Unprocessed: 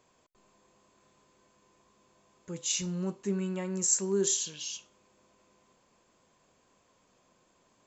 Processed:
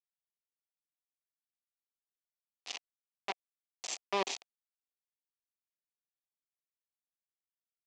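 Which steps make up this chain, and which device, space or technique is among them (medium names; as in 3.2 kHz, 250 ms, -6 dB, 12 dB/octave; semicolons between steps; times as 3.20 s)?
hand-held game console (bit crusher 4-bit; cabinet simulation 420–5200 Hz, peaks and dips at 730 Hz +7 dB, 1.5 kHz -9 dB, 2.5 kHz +4 dB); trim -4 dB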